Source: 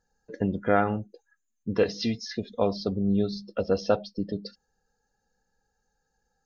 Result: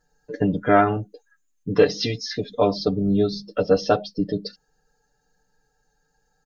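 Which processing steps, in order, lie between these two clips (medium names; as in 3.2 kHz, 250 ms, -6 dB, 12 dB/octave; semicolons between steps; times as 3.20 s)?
comb 6.8 ms, depth 96%; trim +4 dB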